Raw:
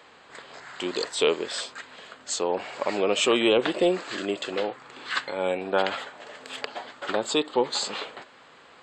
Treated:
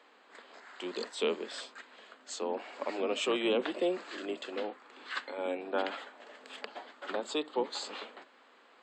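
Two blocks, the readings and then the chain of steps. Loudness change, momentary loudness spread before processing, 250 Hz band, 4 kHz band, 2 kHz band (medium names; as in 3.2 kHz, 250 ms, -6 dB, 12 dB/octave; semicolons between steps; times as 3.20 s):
-9.0 dB, 20 LU, -8.5 dB, -10.5 dB, -9.0 dB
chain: octave divider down 1 oct, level 0 dB; steep high-pass 230 Hz 48 dB/octave; treble shelf 6 kHz -7.5 dB; trim -8.5 dB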